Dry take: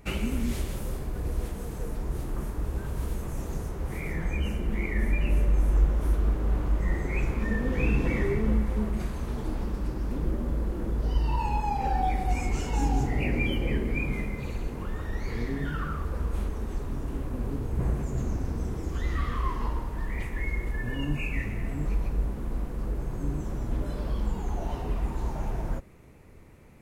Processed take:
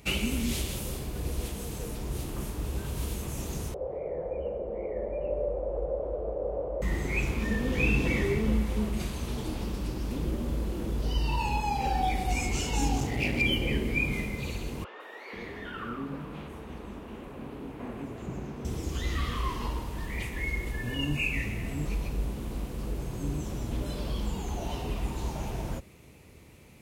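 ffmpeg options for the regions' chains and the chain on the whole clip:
-filter_complex "[0:a]asettb=1/sr,asplit=3[s0][s1][s2];[s0]atrim=end=3.744[s3];[s1]atrim=start=3.74:end=6.82,asetpts=PTS-STARTPTS,afade=t=in:d=0.004:c=qsin,afade=t=out:st=3.076:d=0.004:c=qsin,lowpass=f=540:t=q:w=5,lowshelf=f=380:t=q:w=1.5:g=-12.5[s4];[s2]atrim=start=6.816[s5];[s3][s4]acrossfade=d=0.004:c1=hsin:c2=qsin[s6];[s6][s5]acrossfade=d=0.004:c1=qsin:c2=hsin,asettb=1/sr,asplit=3[s7][s8][s9];[s7]atrim=end=12.964[s10];[s8]atrim=start=12.96:end=13.42,asetpts=PTS-STARTPTS,afade=t=in:d=0.004:c=qsin,afade=t=out:st=0.456:d=0.004:c=qsin,highpass=51,aeval=exprs='clip(val(0),-1,0.0355)':c=same[s11];[s9]atrim=start=13.416[s12];[s10][s11]acrossfade=d=0.004:c1=hsin:c2=qsin[s13];[s13][s12]acrossfade=d=0.004:c1=qsin:c2=hsin,asettb=1/sr,asplit=3[s14][s15][s16];[s14]atrim=end=14.844[s17];[s15]atrim=start=14.84:end=18.65,asetpts=PTS-STARTPTS,afade=t=in:d=0.004:c=qsin,afade=t=out:st=3.806:d=0.004:c=qsin,acrossover=split=170 2800:gain=0.178 1 0.178[s18][s19][s20];[s18][s19][s20]amix=inputs=3:normalize=0,acrossover=split=420|5800[s21][s22][s23];[s23]adelay=160[s24];[s21]adelay=490[s25];[s25][s22][s24]amix=inputs=3:normalize=0,atrim=end_sample=168021[s26];[s16]atrim=start=18.646[s27];[s17][s26]acrossfade=d=0.004:c1=hsin:c2=qsin[s28];[s28][s27]acrossfade=d=0.004:c1=qsin:c2=hsin,highpass=52,highshelf=f=2200:t=q:w=1.5:g=7"

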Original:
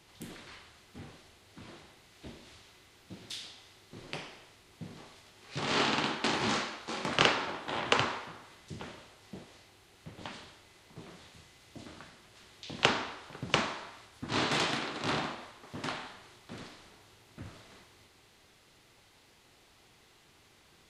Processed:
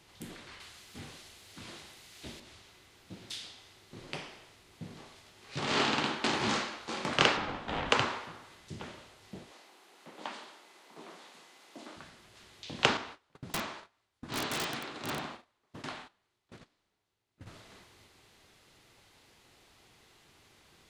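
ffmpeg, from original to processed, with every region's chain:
-filter_complex "[0:a]asettb=1/sr,asplit=3[s0][s1][s2];[s0]atrim=end=0.604[s3];[s1]atrim=start=0.6:end=2.4,asetpts=PTS-STARTPTS,afade=t=in:d=0.004:c=qsin,afade=t=out:st=1.796:d=0.004:c=qsin,highshelf=f=2100:g=9.5,acompressor=mode=upward:threshold=0.00158:ratio=2.5:attack=3.2:release=140:knee=2.83:detection=peak[s4];[s2]atrim=start=2.396[s5];[s3][s4]acrossfade=d=0.004:c1=hsin:c2=qsin[s6];[s6][s5]acrossfade=d=0.004:c1=qsin:c2=hsin,asettb=1/sr,asplit=3[s7][s8][s9];[s7]atrim=end=7.374[s10];[s8]atrim=start=7.37:end=7.9,asetpts=PTS-STARTPTS,afade=t=in:d=0.004:c=qsin,afade=t=out:st=0.526:d=0.004:c=qsin,lowpass=8200,bass=f=250:g=5,treble=f=4000:g=-4,afreqshift=-75[s11];[s9]atrim=start=7.896[s12];[s10][s11]acrossfade=d=0.004:c1=hsin:c2=qsin[s13];[s13][s12]acrossfade=d=0.004:c1=qsin:c2=hsin,asettb=1/sr,asplit=3[s14][s15][s16];[s14]atrim=end=9.514[s17];[s15]atrim=start=9.51:end=11.96,asetpts=PTS-STARTPTS,afade=t=in:d=0.004:c=qsin,afade=t=out:st=2.446:d=0.004:c=qsin,highpass=f=230:w=0.5412,highpass=f=230:w=1.3066,equalizer=f=940:w=1.1:g=5.5[s18];[s16]atrim=start=11.956[s19];[s17][s18]acrossfade=d=0.004:c1=hsin:c2=qsin[s20];[s20][s19]acrossfade=d=0.004:c1=qsin:c2=hsin,asettb=1/sr,asplit=3[s21][s22][s23];[s21]atrim=end=12.974[s24];[s22]atrim=start=12.97:end=17.47,asetpts=PTS-STARTPTS,afade=t=in:d=0.004:c=qsin,afade=t=out:st=4.496:d=0.004:c=qsin,agate=range=0.1:threshold=0.00562:ratio=16:release=100:detection=peak,flanger=delay=1.5:depth=3.3:regen=-87:speed=1.1:shape=triangular,aeval=exprs='(mod(18.8*val(0)+1,2)-1)/18.8':c=same[s25];[s23]atrim=start=17.466[s26];[s24][s25]acrossfade=d=0.004:c1=hsin:c2=qsin[s27];[s27][s26]acrossfade=d=0.004:c1=qsin:c2=hsin"

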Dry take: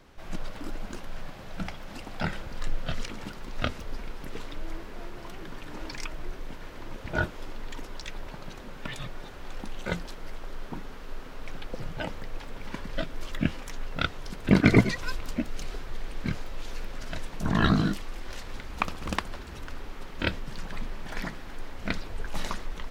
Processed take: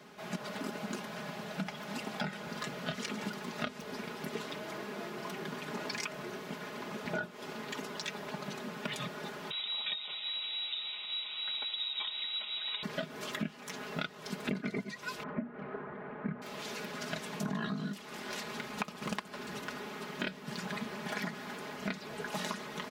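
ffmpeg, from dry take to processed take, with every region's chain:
-filter_complex "[0:a]asettb=1/sr,asplit=3[s0][s1][s2];[s0]atrim=end=9.504[s3];[s1]atrim=start=9.5:end=12.83,asetpts=PTS-STARTPTS,afade=t=in:d=0.004:c=qsin,afade=t=out:st=3.326:d=0.004:c=qsin,bandreject=f=2200:w=7.7,acrossover=split=140|3000[s4][s5][s6];[s5]acompressor=threshold=0.0126:ratio=2:attack=3.2:release=140:knee=2.83:detection=peak[s7];[s4][s7][s6]amix=inputs=3:normalize=0,lowpass=f=3300:t=q:w=0.5098,lowpass=f=3300:t=q:w=0.6013,lowpass=f=3300:t=q:w=0.9,lowpass=f=3300:t=q:w=2.563,afreqshift=-3900[s8];[s2]atrim=start=12.826[s9];[s3][s8]acrossfade=d=0.004:c1=hsin:c2=qsin[s10];[s10][s9]acrossfade=d=0.004:c1=qsin:c2=hsin,asettb=1/sr,asplit=3[s11][s12][s13];[s11]atrim=end=15.234[s14];[s12]atrim=start=15.23:end=16.42,asetpts=PTS-STARTPTS,afade=t=in:d=0.004:c=qsin,afade=t=out:st=1.186:d=0.004:c=qsin,lowpass=f=1700:w=0.5412,lowpass=f=1700:w=1.3066,bandreject=f=60:t=h:w=6,bandreject=f=120:t=h:w=6,bandreject=f=180:t=h:w=6,bandreject=f=240:t=h:w=6,bandreject=f=300:t=h:w=6,bandreject=f=360:t=h:w=6,bandreject=f=420:t=h:w=6,bandreject=f=480:t=h:w=6[s15];[s13]atrim=start=16.416[s16];[s14][s15]acrossfade=d=0.004:c1=hsin:c2=qsin[s17];[s17][s16]acrossfade=d=0.004:c1=qsin:c2=hsin,highpass=f=130:w=0.5412,highpass=f=130:w=1.3066,aecho=1:1:4.8:0.75,acompressor=threshold=0.02:ratio=20,volume=1.19"

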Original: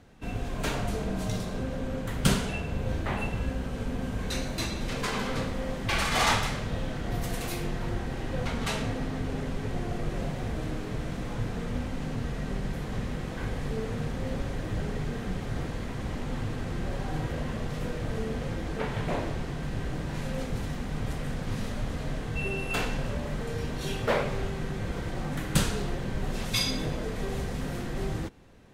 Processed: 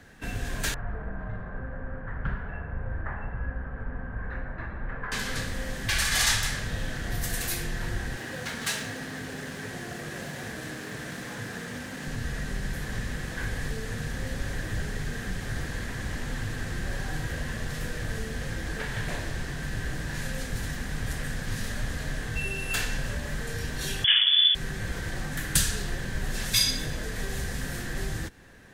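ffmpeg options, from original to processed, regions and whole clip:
-filter_complex "[0:a]asettb=1/sr,asplit=3[s0][s1][s2];[s0]atrim=end=0.744[s3];[s1]atrim=start=0.74:end=5.12,asetpts=PTS-STARTPTS,afade=t=in:d=0.004:c=qsin,afade=t=out:st=4.376:d=0.004:c=qsin,lowpass=f=1400:w=0.5412,lowpass=f=1400:w=1.3066,equalizer=f=290:t=o:w=2.7:g=-10.5[s4];[s2]atrim=start=5.116[s5];[s3][s4]acrossfade=d=0.004:c1=hsin:c2=qsin[s6];[s6][s5]acrossfade=d=0.004:c1=qsin:c2=hsin,asettb=1/sr,asplit=3[s7][s8][s9];[s7]atrim=end=8.164[s10];[s8]atrim=start=8.16:end=12.06,asetpts=PTS-STARTPTS,afade=t=in:d=0.004:c=qsin,afade=t=out:st=3.896:d=0.004:c=qsin,aeval=exprs='sgn(val(0))*max(abs(val(0))-0.00282,0)':c=same,highpass=160[s11];[s9]atrim=start=12.056[s12];[s10][s11]acrossfade=d=0.004:c1=hsin:c2=qsin[s13];[s13][s12]acrossfade=d=0.004:c1=qsin:c2=hsin,asettb=1/sr,asplit=3[s14][s15][s16];[s14]atrim=end=24.044[s17];[s15]atrim=start=24.04:end=24.55,asetpts=PTS-STARTPTS,afade=t=in:d=0.004:c=qsin,afade=t=out:st=0.506:d=0.004:c=qsin,lowshelf=f=360:g=8.5,lowpass=f=3000:t=q:w=0.5098,lowpass=f=3000:t=q:w=0.6013,lowpass=f=3000:t=q:w=0.9,lowpass=f=3000:t=q:w=2.563,afreqshift=-3500[s18];[s16]atrim=start=24.546[s19];[s17][s18]acrossfade=d=0.004:c1=hsin:c2=qsin[s20];[s20][s19]acrossfade=d=0.004:c1=qsin:c2=hsin,highshelf=f=4400:g=9,acrossover=split=120|3000[s21][s22][s23];[s22]acompressor=threshold=0.01:ratio=3[s24];[s21][s24][s23]amix=inputs=3:normalize=0,equalizer=f=1700:t=o:w=0.36:g=14,volume=1.19"

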